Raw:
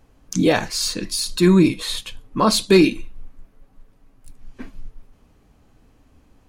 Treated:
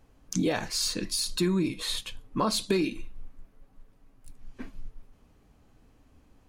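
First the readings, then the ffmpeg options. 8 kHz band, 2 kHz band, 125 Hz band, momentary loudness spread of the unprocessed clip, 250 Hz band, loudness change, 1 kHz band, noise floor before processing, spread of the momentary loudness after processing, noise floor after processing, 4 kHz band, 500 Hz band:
-6.5 dB, -11.0 dB, -11.5 dB, 14 LU, -11.5 dB, -10.5 dB, -10.0 dB, -57 dBFS, 19 LU, -62 dBFS, -7.0 dB, -12.0 dB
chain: -af "acompressor=threshold=-18dB:ratio=6,volume=-5dB"

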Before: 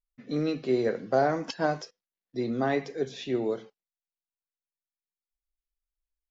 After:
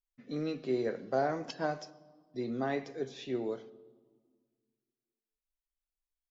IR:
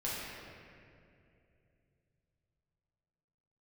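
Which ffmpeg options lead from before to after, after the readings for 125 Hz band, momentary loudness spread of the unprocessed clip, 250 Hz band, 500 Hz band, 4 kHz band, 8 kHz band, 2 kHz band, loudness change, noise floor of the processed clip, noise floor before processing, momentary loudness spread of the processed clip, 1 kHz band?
-7.0 dB, 10 LU, -6.0 dB, -6.5 dB, -6.5 dB, n/a, -6.5 dB, -6.5 dB, under -85 dBFS, under -85 dBFS, 11 LU, -6.5 dB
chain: -filter_complex "[0:a]asplit=2[a][b];[1:a]atrim=start_sample=2205,asetrate=83790,aresample=44100[c];[b][c]afir=irnorm=-1:irlink=0,volume=-15.5dB[d];[a][d]amix=inputs=2:normalize=0,volume=-7dB"

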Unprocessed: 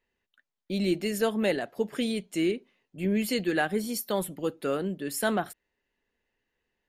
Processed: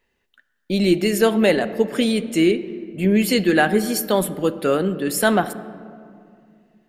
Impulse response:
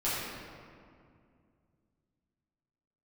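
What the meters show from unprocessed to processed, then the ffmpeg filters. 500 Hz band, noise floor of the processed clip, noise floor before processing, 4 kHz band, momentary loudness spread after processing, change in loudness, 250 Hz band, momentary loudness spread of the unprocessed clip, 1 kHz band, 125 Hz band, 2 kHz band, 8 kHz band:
+10.0 dB, -71 dBFS, under -85 dBFS, +9.5 dB, 8 LU, +10.0 dB, +10.0 dB, 6 LU, +10.0 dB, +10.0 dB, +10.0 dB, +9.0 dB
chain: -filter_complex "[0:a]asplit=2[a][b];[1:a]atrim=start_sample=2205,highshelf=f=6.1k:g=-11[c];[b][c]afir=irnorm=-1:irlink=0,volume=-20dB[d];[a][d]amix=inputs=2:normalize=0,volume=9dB"

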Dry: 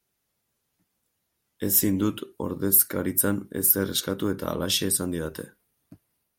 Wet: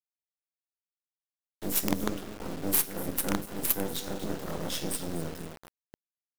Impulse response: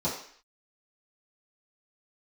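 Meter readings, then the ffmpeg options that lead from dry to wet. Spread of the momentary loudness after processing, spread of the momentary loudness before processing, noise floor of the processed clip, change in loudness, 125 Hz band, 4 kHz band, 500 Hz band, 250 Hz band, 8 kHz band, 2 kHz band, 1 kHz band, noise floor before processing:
13 LU, 14 LU, under -85 dBFS, -7.5 dB, -6.5 dB, -8.0 dB, -6.5 dB, -7.0 dB, -8.5 dB, -4.0 dB, -1.5 dB, -78 dBFS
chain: -filter_complex "[0:a]asplit=2[a][b];[b]adelay=244.9,volume=-11dB,highshelf=f=4k:g=-5.51[c];[a][c]amix=inputs=2:normalize=0,asplit=2[d][e];[1:a]atrim=start_sample=2205,adelay=13[f];[e][f]afir=irnorm=-1:irlink=0,volume=-11.5dB[g];[d][g]amix=inputs=2:normalize=0,acrusher=bits=3:dc=4:mix=0:aa=0.000001,volume=-7dB"

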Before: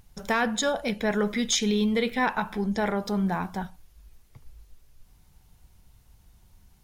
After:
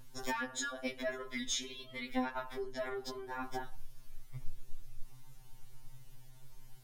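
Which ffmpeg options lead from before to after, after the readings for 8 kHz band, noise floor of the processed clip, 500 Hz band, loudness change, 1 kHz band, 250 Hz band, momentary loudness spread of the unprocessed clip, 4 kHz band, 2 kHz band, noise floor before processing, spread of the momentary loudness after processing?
-9.5 dB, -54 dBFS, -13.0 dB, -13.0 dB, -12.0 dB, -16.5 dB, 6 LU, -10.5 dB, -11.0 dB, -59 dBFS, 22 LU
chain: -af "acompressor=threshold=-35dB:ratio=8,asubboost=boost=2.5:cutoff=100,afftfilt=real='re*2.45*eq(mod(b,6),0)':imag='im*2.45*eq(mod(b,6),0)':win_size=2048:overlap=0.75,volume=3.5dB"

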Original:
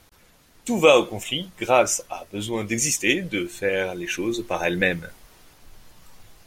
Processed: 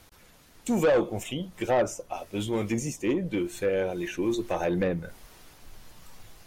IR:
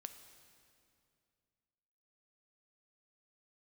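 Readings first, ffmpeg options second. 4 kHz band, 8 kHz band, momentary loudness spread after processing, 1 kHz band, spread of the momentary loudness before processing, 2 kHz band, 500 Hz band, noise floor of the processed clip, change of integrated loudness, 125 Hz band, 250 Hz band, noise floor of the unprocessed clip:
-13.0 dB, -13.5 dB, 11 LU, -7.0 dB, 11 LU, -11.5 dB, -4.5 dB, -56 dBFS, -6.0 dB, -0.5 dB, -1.5 dB, -56 dBFS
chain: -filter_complex "[0:a]acrossover=split=930[a][b];[b]acompressor=threshold=-36dB:ratio=16[c];[a][c]amix=inputs=2:normalize=0,asoftclip=type=tanh:threshold=-17.5dB"

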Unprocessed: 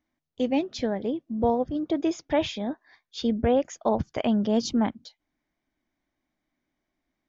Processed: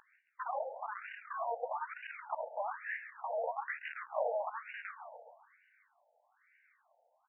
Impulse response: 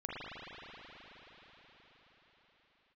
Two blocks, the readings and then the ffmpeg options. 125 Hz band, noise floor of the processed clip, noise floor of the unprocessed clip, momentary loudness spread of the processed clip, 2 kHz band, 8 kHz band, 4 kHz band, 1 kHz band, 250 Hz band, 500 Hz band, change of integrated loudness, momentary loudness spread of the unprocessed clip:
under -40 dB, -76 dBFS, -83 dBFS, 9 LU, 0.0 dB, n/a, under -20 dB, -5.5 dB, under -40 dB, -12.5 dB, -13.0 dB, 7 LU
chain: -filter_complex "[0:a]asplit=2[a][b];[b]highpass=f=720:p=1,volume=22dB,asoftclip=type=tanh:threshold=-11dB[c];[a][c]amix=inputs=2:normalize=0,lowpass=f=1.2k:p=1,volume=-6dB,equalizer=f=500:t=o:w=1:g=-6,equalizer=f=1k:t=o:w=1:g=-8,equalizer=f=4k:t=o:w=1:g=-4,acrossover=split=140[d][e];[e]acompressor=threshold=-32dB:ratio=4[f];[d][f]amix=inputs=2:normalize=0,aeval=exprs='val(0)+0.0158*sin(2*PI*4500*n/s)':c=same,flanger=delay=17:depth=4.2:speed=2,asoftclip=type=hard:threshold=-30dB,bass=f=250:g=13,treble=f=4k:g=-13,asoftclip=type=tanh:threshold=-38.5dB,asplit=2[g][h];[h]aecho=0:1:136|272|408|544|680|816|952:0.266|0.154|0.0895|0.0519|0.0301|0.0175|0.0101[i];[g][i]amix=inputs=2:normalize=0,afftfilt=real='re*between(b*sr/1024,630*pow(2100/630,0.5+0.5*sin(2*PI*1.1*pts/sr))/1.41,630*pow(2100/630,0.5+0.5*sin(2*PI*1.1*pts/sr))*1.41)':imag='im*between(b*sr/1024,630*pow(2100/630,0.5+0.5*sin(2*PI*1.1*pts/sr))/1.41,630*pow(2100/630,0.5+0.5*sin(2*PI*1.1*pts/sr))*1.41)':win_size=1024:overlap=0.75,volume=15.5dB"

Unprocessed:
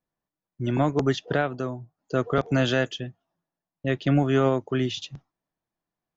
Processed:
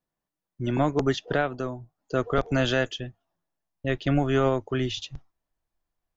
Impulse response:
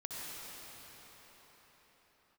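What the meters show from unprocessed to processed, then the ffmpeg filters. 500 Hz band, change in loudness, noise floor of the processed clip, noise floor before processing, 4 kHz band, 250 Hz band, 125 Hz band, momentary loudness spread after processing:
-0.5 dB, -1.5 dB, under -85 dBFS, under -85 dBFS, 0.0 dB, -2.0 dB, -2.0 dB, 11 LU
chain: -af "asubboost=boost=9.5:cutoff=56"

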